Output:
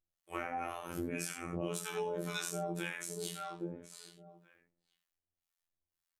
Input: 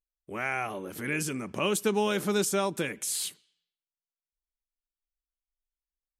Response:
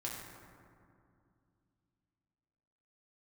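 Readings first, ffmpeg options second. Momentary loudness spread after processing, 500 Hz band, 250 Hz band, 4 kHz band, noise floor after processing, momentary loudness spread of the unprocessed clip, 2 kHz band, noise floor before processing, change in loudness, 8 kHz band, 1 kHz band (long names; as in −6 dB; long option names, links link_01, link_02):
11 LU, −9.5 dB, −9.0 dB, −9.5 dB, below −85 dBFS, 9 LU, −9.5 dB, below −85 dBFS, −10.0 dB, −9.5 dB, −7.0 dB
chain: -filter_complex "[0:a]asplit=2[link_01][link_02];[link_02]adelay=824,lowpass=frequency=1700:poles=1,volume=-16.5dB,asplit=2[link_03][link_04];[link_04]adelay=824,lowpass=frequency=1700:poles=1,volume=0.18[link_05];[link_01][link_03][link_05]amix=inputs=3:normalize=0,acrossover=split=750[link_06][link_07];[link_06]aeval=exprs='val(0)*(1-1/2+1/2*cos(2*PI*1.9*n/s))':channel_layout=same[link_08];[link_07]aeval=exprs='val(0)*(1-1/2-1/2*cos(2*PI*1.9*n/s))':channel_layout=same[link_09];[link_08][link_09]amix=inputs=2:normalize=0[link_10];[1:a]atrim=start_sample=2205,atrim=end_sample=4410[link_11];[link_10][link_11]afir=irnorm=-1:irlink=0,afftfilt=real='hypot(re,im)*cos(PI*b)':imag='0':win_size=2048:overlap=0.75,acompressor=threshold=-47dB:ratio=6,volume=12.5dB"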